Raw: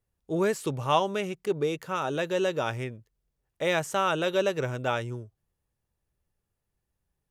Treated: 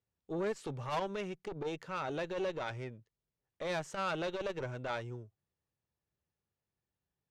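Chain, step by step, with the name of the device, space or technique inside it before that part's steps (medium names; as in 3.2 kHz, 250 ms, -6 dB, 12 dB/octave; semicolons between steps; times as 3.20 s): valve radio (band-pass 88–5900 Hz; valve stage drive 23 dB, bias 0.45; transformer saturation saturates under 240 Hz); trim -4.5 dB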